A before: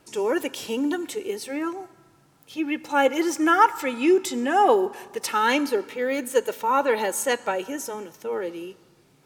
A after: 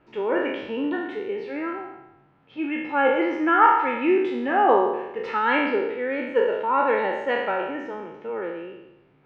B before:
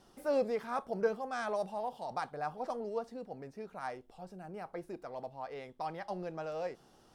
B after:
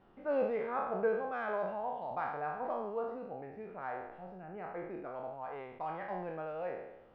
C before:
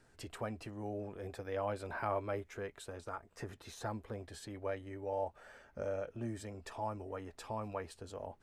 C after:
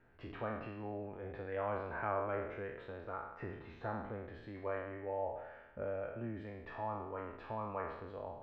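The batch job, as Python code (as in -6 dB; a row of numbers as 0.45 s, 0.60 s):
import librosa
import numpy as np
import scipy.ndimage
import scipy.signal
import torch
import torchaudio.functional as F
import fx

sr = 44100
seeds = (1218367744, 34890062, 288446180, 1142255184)

y = fx.spec_trails(x, sr, decay_s=0.94)
y = scipy.signal.sosfilt(scipy.signal.butter(4, 2600.0, 'lowpass', fs=sr, output='sos'), y)
y = y * 10.0 ** (-2.5 / 20.0)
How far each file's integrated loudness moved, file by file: +0.5 LU, +0.5 LU, 0.0 LU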